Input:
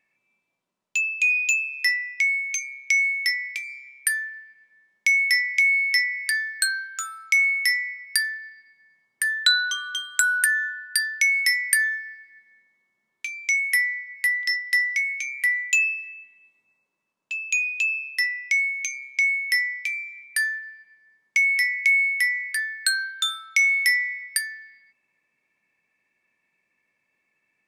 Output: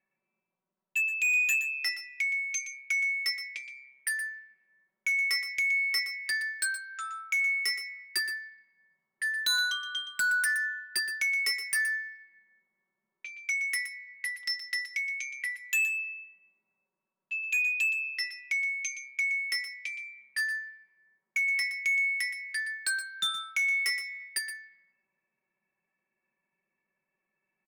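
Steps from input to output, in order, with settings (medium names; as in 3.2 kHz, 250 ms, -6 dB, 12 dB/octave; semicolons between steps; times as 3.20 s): level-controlled noise filter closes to 1.6 kHz, open at -22 dBFS; comb 5.3 ms, depth 79%; hard clipper -16.5 dBFS, distortion -13 dB; delay 120 ms -11.5 dB; trim -7.5 dB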